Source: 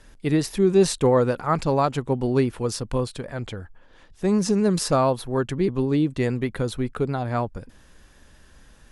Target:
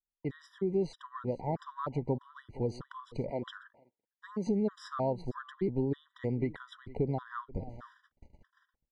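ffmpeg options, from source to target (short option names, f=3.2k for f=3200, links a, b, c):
-filter_complex "[0:a]highshelf=f=2.9k:g=-12,bandreject=f=2.6k:w=5,asplit=2[a][b];[b]aecho=0:1:460:0.0794[c];[a][c]amix=inputs=2:normalize=0,dynaudnorm=f=100:g=13:m=14dB,lowpass=4.4k,agate=range=-44dB:threshold=-34dB:ratio=16:detection=peak,asettb=1/sr,asplit=3[d][e][f];[d]atrim=end=3.304[g];[e]atrim=start=3.3:end=4.47,asetpts=PTS-STARTPTS,afade=t=in:d=0.004:c=qsin,afade=t=out:st=1.166:d=0.004:c=qsin,highpass=260[h];[f]atrim=start=4.466[i];[g][h]acrossfade=d=0.004:c1=hsin:c2=qsin[j];[j][i]acrossfade=d=0.004:c1=qsin:c2=hsin,acompressor=threshold=-21dB:ratio=3,afftfilt=real='re*gt(sin(2*PI*1.6*pts/sr)*(1-2*mod(floor(b*sr/1024/980),2)),0)':imag='im*gt(sin(2*PI*1.6*pts/sr)*(1-2*mod(floor(b*sr/1024/980),2)),0)':win_size=1024:overlap=0.75,volume=-8.5dB"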